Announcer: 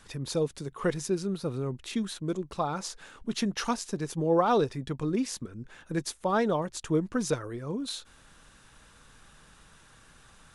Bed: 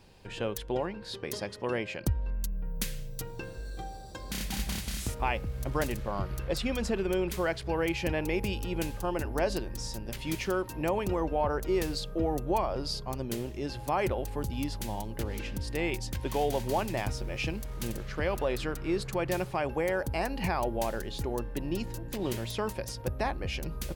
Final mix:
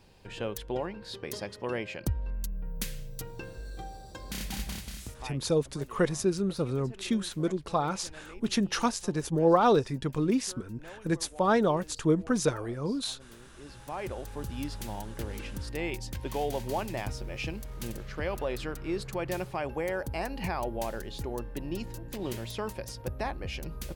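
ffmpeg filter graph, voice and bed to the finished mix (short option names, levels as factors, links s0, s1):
-filter_complex "[0:a]adelay=5150,volume=1.26[s0];[1:a]volume=5.62,afade=t=out:st=4.5:d=0.91:silence=0.133352,afade=t=in:st=13.47:d=1.16:silence=0.149624[s1];[s0][s1]amix=inputs=2:normalize=0"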